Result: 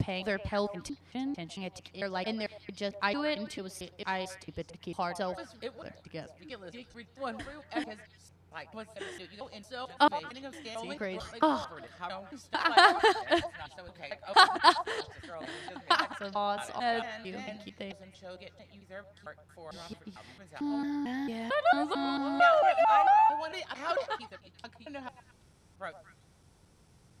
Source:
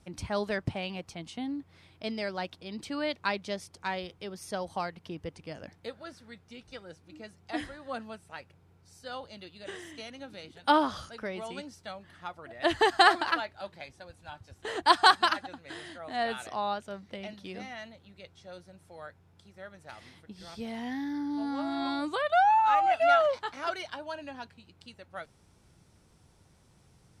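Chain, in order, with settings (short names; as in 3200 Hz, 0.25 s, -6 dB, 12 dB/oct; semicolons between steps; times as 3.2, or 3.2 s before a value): slices in reverse order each 0.224 s, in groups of 4; delay with a stepping band-pass 0.113 s, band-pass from 710 Hz, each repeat 1.4 oct, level -10.5 dB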